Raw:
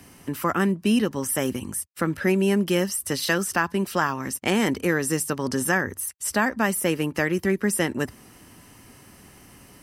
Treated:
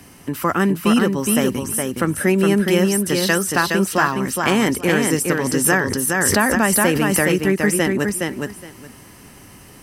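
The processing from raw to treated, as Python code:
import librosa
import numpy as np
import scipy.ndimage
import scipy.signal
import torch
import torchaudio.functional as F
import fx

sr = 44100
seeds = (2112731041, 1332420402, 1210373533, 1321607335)

p1 = x + fx.echo_feedback(x, sr, ms=416, feedback_pct=17, wet_db=-4.0, dry=0)
p2 = fx.pre_swell(p1, sr, db_per_s=20.0, at=(5.64, 7.42))
y = p2 * 10.0 ** (4.5 / 20.0)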